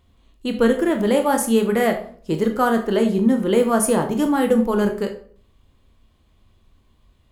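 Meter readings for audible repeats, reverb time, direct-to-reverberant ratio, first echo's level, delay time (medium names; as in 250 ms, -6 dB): no echo, 0.50 s, 4.0 dB, no echo, no echo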